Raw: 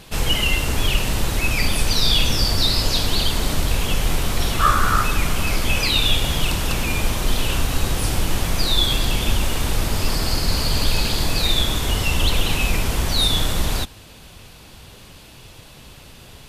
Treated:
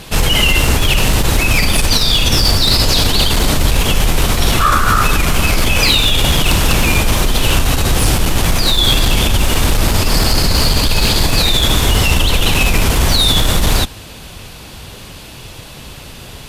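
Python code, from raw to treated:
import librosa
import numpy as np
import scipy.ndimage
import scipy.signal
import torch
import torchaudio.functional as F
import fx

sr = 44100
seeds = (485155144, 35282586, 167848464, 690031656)

p1 = fx.over_compress(x, sr, threshold_db=-19.0, ratio=-0.5)
p2 = x + (p1 * librosa.db_to_amplitude(1.0))
p3 = fx.clip_asym(p2, sr, top_db=-8.5, bottom_db=-6.0)
y = p3 * librosa.db_to_amplitude(2.5)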